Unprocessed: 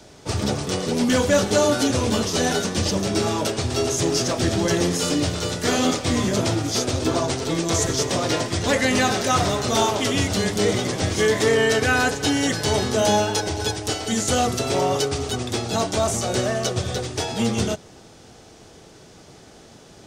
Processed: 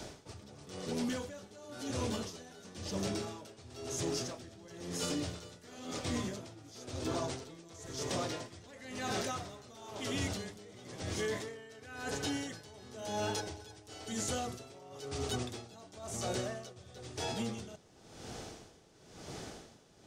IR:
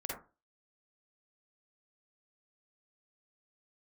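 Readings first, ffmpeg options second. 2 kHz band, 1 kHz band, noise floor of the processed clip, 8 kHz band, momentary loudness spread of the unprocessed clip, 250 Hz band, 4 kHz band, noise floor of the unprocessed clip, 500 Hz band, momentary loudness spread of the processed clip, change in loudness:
−19.5 dB, −18.5 dB, −59 dBFS, −17.5 dB, 6 LU, −17.5 dB, −18.0 dB, −47 dBFS, −19.0 dB, 14 LU, −18.0 dB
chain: -af "alimiter=limit=-14dB:level=0:latency=1,areverse,acompressor=threshold=-34dB:ratio=8,areverse,aeval=exprs='val(0)*pow(10,-19*(0.5-0.5*cos(2*PI*0.98*n/s))/20)':channel_layout=same,volume=2dB"

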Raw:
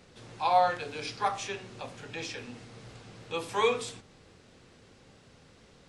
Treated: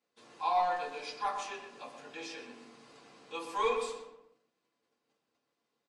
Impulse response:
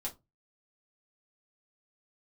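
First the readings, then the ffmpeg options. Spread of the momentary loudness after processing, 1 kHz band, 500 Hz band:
19 LU, −3.5 dB, −5.0 dB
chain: -filter_complex "[0:a]agate=range=-19dB:threshold=-53dB:ratio=16:detection=peak,highpass=320,asoftclip=type=tanh:threshold=-16.5dB,asplit=2[link_01][link_02];[link_02]adelay=121,lowpass=frequency=2000:poles=1,volume=-6dB,asplit=2[link_03][link_04];[link_04]adelay=121,lowpass=frequency=2000:poles=1,volume=0.43,asplit=2[link_05][link_06];[link_06]adelay=121,lowpass=frequency=2000:poles=1,volume=0.43,asplit=2[link_07][link_08];[link_08]adelay=121,lowpass=frequency=2000:poles=1,volume=0.43,asplit=2[link_09][link_10];[link_10]adelay=121,lowpass=frequency=2000:poles=1,volume=0.43[link_11];[link_01][link_03][link_05][link_07][link_09][link_11]amix=inputs=6:normalize=0[link_12];[1:a]atrim=start_sample=2205,asetrate=57330,aresample=44100[link_13];[link_12][link_13]afir=irnorm=-1:irlink=0,volume=-3dB"

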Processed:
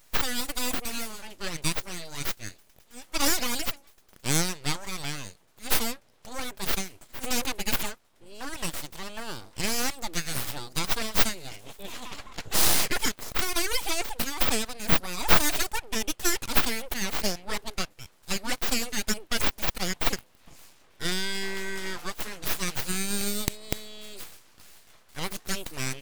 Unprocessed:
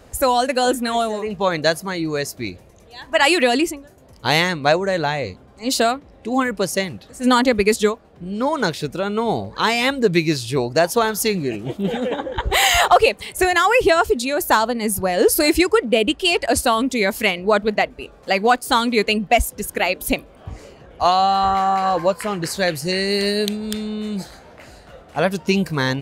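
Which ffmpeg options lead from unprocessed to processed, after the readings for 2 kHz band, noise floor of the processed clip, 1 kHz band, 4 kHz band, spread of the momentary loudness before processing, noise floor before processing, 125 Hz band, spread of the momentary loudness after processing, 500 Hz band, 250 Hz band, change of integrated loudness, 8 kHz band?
−11.0 dB, −60 dBFS, −16.5 dB, −7.5 dB, 11 LU, −47 dBFS, −9.5 dB, 14 LU, −19.0 dB, −14.0 dB, −9.5 dB, −2.0 dB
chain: -af "crystalizer=i=10:c=0,aeval=exprs='abs(val(0))':channel_layout=same,volume=-17dB"

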